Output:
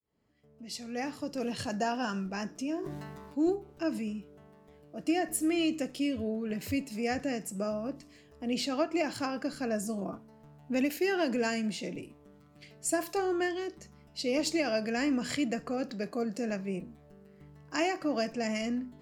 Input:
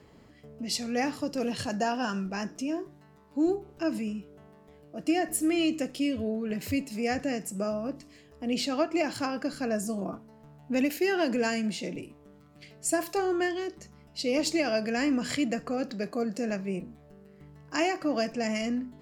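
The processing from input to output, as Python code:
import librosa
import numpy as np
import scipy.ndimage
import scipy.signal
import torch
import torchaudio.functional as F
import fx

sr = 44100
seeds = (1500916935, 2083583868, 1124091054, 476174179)

y = fx.fade_in_head(x, sr, length_s=1.64)
y = fx.sustainer(y, sr, db_per_s=28.0, at=(2.78, 3.5))
y = y * 10.0 ** (-2.5 / 20.0)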